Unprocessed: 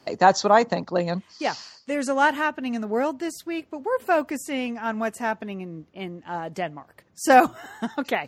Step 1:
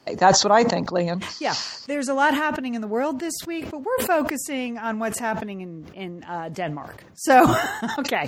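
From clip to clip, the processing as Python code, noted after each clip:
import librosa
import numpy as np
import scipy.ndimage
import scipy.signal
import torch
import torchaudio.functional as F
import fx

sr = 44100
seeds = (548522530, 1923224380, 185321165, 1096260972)

y = fx.sustainer(x, sr, db_per_s=55.0)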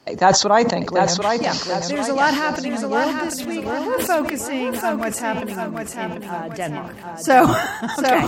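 y = fx.echo_feedback(x, sr, ms=741, feedback_pct=43, wet_db=-5.0)
y = y * 10.0 ** (1.5 / 20.0)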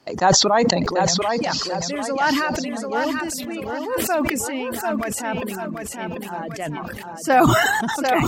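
y = fx.dereverb_blind(x, sr, rt60_s=0.76)
y = fx.sustainer(y, sr, db_per_s=23.0)
y = y * 10.0 ** (-3.0 / 20.0)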